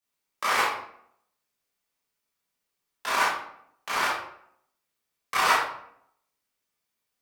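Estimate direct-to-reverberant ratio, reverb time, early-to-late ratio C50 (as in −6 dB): −10.5 dB, 0.70 s, 1.5 dB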